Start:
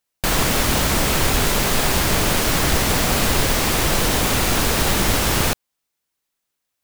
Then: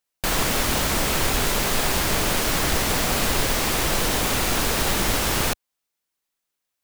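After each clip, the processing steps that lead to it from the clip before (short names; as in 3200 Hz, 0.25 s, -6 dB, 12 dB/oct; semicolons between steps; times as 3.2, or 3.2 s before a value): bell 100 Hz -3.5 dB 2.5 oct; gain -3 dB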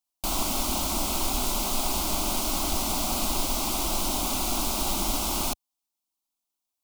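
fixed phaser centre 470 Hz, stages 6; gain -3 dB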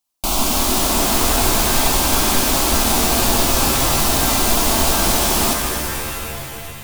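shimmer reverb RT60 2.9 s, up +7 st, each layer -2 dB, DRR 3 dB; gain +8 dB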